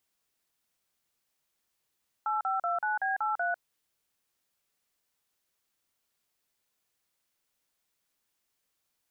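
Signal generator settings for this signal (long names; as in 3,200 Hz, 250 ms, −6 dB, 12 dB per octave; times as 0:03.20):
touch tones "8529B83", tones 149 ms, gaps 40 ms, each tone −29.5 dBFS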